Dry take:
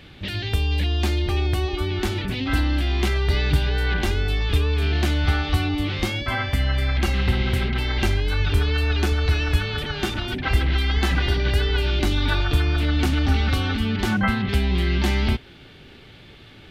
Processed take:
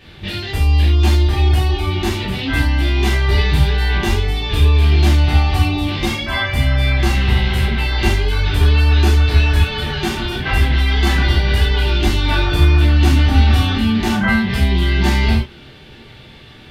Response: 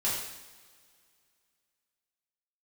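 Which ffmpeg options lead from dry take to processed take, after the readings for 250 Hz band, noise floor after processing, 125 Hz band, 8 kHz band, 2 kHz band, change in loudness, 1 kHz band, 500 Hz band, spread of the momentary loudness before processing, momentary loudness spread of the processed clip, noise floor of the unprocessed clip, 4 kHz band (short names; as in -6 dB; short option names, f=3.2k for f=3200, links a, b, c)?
+6.0 dB, -40 dBFS, +7.5 dB, +6.0 dB, +5.5 dB, +7.0 dB, +6.5 dB, +4.0 dB, 4 LU, 7 LU, -46 dBFS, +5.5 dB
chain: -filter_complex "[1:a]atrim=start_sample=2205,atrim=end_sample=4410[a];[0:a][a]afir=irnorm=-1:irlink=0,volume=-1dB"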